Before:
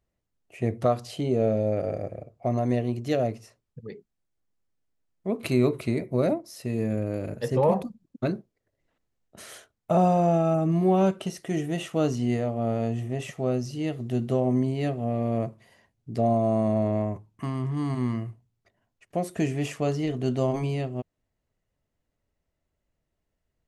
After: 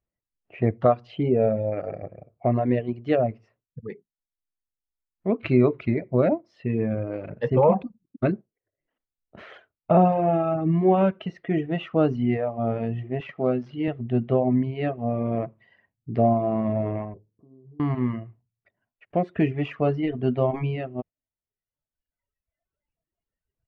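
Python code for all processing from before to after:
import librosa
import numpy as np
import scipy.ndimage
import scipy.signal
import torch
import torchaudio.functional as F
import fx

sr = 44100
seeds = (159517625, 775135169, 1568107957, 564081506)

y = fx.chain(x, sr, fx.dead_time(dead_ms=0.071),
    fx.highpass(hz=140.0, slope=12), at=(13.2, 13.88))
y = fx.chain(y, sr, fx.ladder_lowpass(hz=530.0, resonance_pct=60),
    fx.over_compress(threshold_db=-47.0, ratio=-1.0), at=(17.14, 17.8))
y = fx.noise_reduce_blind(y, sr, reduce_db=12)
y = scipy.signal.sosfilt(scipy.signal.butter(4, 2700.0, 'lowpass', fs=sr, output='sos'), y)
y = fx.dereverb_blind(y, sr, rt60_s=1.4)
y = y * librosa.db_to_amplitude(4.5)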